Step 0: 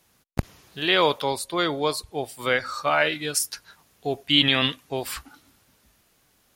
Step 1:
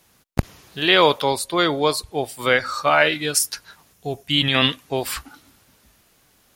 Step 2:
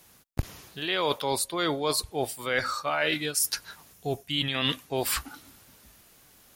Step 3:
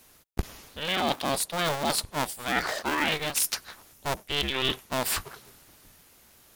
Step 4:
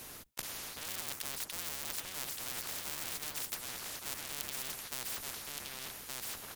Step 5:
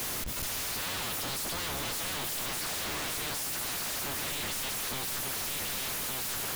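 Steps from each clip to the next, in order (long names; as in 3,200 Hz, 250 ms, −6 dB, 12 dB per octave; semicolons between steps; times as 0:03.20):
gain on a spectral selection 0:03.93–0:04.55, 210–5,100 Hz −6 dB; level +5 dB
high-shelf EQ 9,000 Hz +5.5 dB; reversed playback; downward compressor 6 to 1, threshold −24 dBFS, peak gain reduction 13.5 dB; reversed playback
sub-harmonics by changed cycles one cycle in 2, inverted
sub-octave generator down 1 octave, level +3 dB; single-tap delay 1,170 ms −11 dB; every bin compressed towards the loudest bin 10 to 1; level −1.5 dB
sign of each sample alone; convolution reverb RT60 1.5 s, pre-delay 150 ms, DRR 11 dB; level +7.5 dB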